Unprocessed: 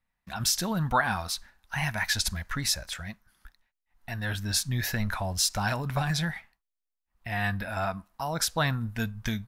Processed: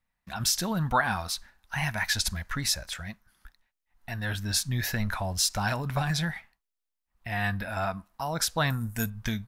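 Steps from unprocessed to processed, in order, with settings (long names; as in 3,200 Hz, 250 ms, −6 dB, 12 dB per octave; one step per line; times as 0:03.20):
0:08.70–0:09.10: high shelf with overshoot 5,700 Hz +13 dB, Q 1.5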